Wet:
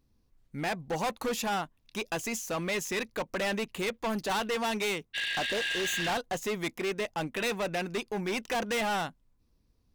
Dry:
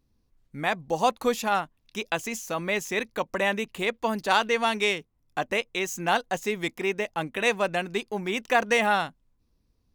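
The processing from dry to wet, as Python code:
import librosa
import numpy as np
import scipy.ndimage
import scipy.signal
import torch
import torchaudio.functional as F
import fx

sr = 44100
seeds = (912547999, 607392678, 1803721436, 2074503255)

y = fx.spec_repair(x, sr, seeds[0], start_s=5.17, length_s=0.94, low_hz=1600.0, high_hz=5800.0, source='after')
y = np.clip(10.0 ** (27.5 / 20.0) * y, -1.0, 1.0) / 10.0 ** (27.5 / 20.0)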